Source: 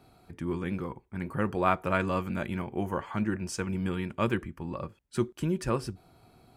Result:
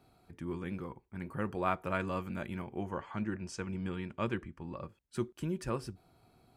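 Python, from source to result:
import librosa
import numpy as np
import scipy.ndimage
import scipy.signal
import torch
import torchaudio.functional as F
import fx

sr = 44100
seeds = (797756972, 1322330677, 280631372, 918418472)

y = fx.lowpass(x, sr, hz=7500.0, slope=12, at=(2.78, 4.84))
y = y * librosa.db_to_amplitude(-6.5)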